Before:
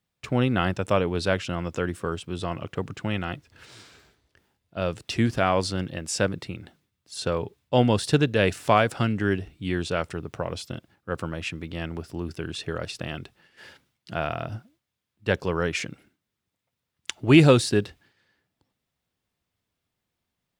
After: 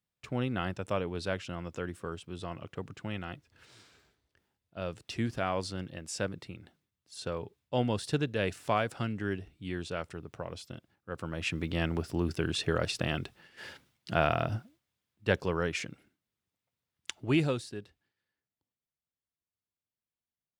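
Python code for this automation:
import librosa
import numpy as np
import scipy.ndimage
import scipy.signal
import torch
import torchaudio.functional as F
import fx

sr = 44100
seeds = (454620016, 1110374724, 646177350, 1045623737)

y = fx.gain(x, sr, db=fx.line((11.15, -9.5), (11.58, 1.5), (14.41, 1.5), (15.82, -6.5), (17.1, -6.5), (17.72, -19.0)))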